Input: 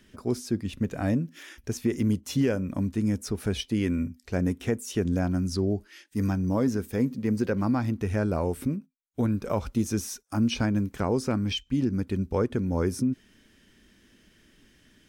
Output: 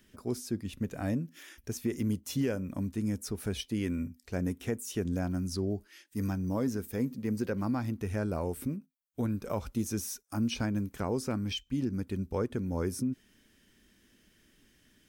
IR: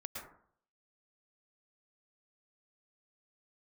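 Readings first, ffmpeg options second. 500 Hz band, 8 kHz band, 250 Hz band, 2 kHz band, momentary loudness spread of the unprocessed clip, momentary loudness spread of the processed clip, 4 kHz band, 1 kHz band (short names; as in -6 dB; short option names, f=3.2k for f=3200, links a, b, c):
-6.0 dB, -2.5 dB, -6.0 dB, -5.5 dB, 6 LU, 5 LU, -5.0 dB, -6.0 dB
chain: -af "highshelf=f=10k:g=11,volume=-6dB"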